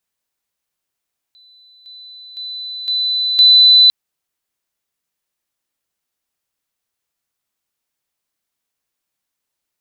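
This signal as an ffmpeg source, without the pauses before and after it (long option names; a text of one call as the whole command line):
ffmpeg -f lavfi -i "aevalsrc='pow(10,(-45+10*floor(t/0.51))/20)*sin(2*PI*4000*t)':duration=2.55:sample_rate=44100" out.wav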